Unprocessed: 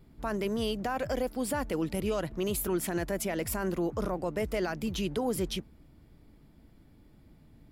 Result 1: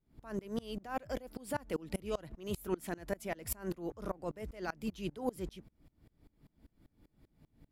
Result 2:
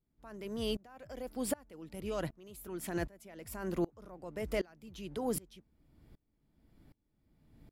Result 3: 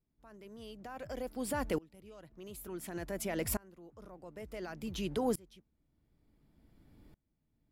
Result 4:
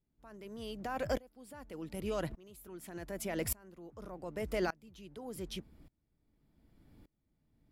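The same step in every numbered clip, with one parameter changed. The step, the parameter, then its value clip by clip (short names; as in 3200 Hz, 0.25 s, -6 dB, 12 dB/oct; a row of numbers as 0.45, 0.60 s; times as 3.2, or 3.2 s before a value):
dB-ramp tremolo, rate: 5.1, 1.3, 0.56, 0.85 Hz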